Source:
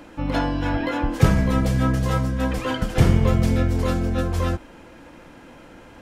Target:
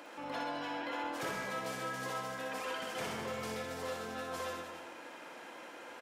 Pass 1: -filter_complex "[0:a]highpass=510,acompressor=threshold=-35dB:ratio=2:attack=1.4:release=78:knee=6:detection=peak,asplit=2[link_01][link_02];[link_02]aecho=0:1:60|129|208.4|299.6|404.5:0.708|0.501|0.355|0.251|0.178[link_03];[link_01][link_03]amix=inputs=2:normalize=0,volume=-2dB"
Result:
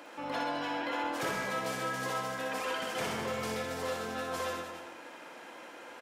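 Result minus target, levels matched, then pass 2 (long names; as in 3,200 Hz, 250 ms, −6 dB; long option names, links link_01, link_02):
downward compressor: peak gain reduction −4.5 dB
-filter_complex "[0:a]highpass=510,acompressor=threshold=-44dB:ratio=2:attack=1.4:release=78:knee=6:detection=peak,asplit=2[link_01][link_02];[link_02]aecho=0:1:60|129|208.4|299.6|404.5:0.708|0.501|0.355|0.251|0.178[link_03];[link_01][link_03]amix=inputs=2:normalize=0,volume=-2dB"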